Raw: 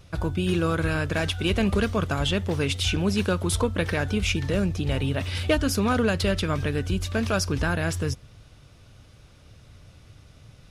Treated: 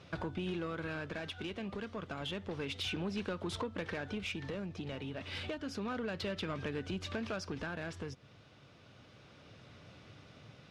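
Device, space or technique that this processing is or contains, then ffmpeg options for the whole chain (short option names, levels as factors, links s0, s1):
AM radio: -af "highpass=170,lowpass=4100,acompressor=threshold=0.02:ratio=6,asoftclip=type=tanh:threshold=0.0316,tremolo=f=0.3:d=0.36,volume=1.12"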